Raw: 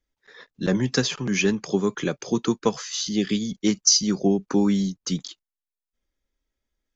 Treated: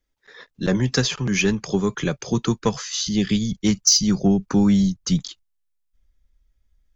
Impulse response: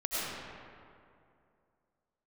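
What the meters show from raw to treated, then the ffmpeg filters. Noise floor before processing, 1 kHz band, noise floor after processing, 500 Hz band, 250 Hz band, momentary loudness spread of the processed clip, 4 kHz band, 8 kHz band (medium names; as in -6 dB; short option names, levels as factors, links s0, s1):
under -85 dBFS, +1.5 dB, -71 dBFS, -0.5 dB, +3.0 dB, 8 LU, +2.0 dB, no reading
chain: -af "asubboost=boost=7.5:cutoff=120,acontrast=59,volume=0.668"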